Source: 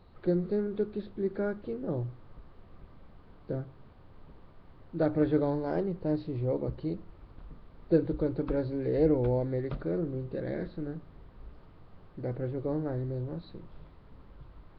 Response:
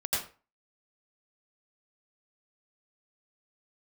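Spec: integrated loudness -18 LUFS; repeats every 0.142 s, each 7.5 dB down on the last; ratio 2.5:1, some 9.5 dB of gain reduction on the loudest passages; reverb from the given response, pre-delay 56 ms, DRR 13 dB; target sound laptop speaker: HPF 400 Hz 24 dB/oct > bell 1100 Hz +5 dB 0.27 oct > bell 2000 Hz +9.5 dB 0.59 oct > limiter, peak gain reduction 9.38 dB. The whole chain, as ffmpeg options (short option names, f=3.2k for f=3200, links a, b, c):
-filter_complex "[0:a]acompressor=threshold=-34dB:ratio=2.5,aecho=1:1:142|284|426|568|710:0.422|0.177|0.0744|0.0312|0.0131,asplit=2[a][b];[1:a]atrim=start_sample=2205,adelay=56[c];[b][c]afir=irnorm=-1:irlink=0,volume=-20dB[d];[a][d]amix=inputs=2:normalize=0,highpass=f=400:w=0.5412,highpass=f=400:w=1.3066,equalizer=f=1.1k:t=o:w=0.27:g=5,equalizer=f=2k:t=o:w=0.59:g=9.5,volume=26dB,alimiter=limit=-8dB:level=0:latency=1"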